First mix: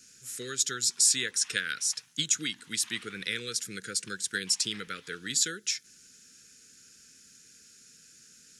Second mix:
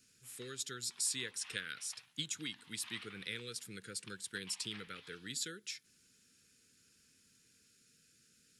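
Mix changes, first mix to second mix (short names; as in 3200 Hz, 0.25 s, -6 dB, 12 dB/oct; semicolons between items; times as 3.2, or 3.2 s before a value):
speech -8.0 dB; master: add fifteen-band EQ 100 Hz +5 dB, 1600 Hz -4 dB, 6300 Hz -9 dB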